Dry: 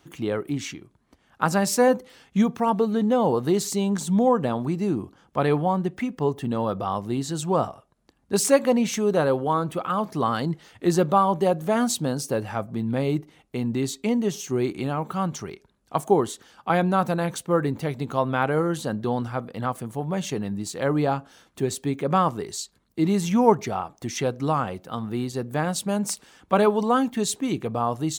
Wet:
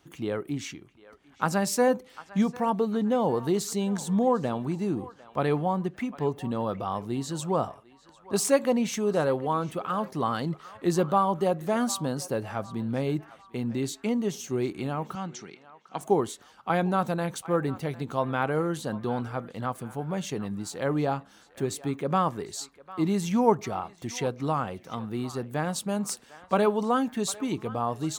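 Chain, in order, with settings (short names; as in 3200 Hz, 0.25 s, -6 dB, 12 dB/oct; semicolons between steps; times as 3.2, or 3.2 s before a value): 15.15–16.01 speaker cabinet 220–7200 Hz, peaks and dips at 390 Hz -7 dB, 610 Hz -9 dB, 1100 Hz -9 dB; narrowing echo 0.751 s, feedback 49%, band-pass 1600 Hz, level -15.5 dB; gain -4 dB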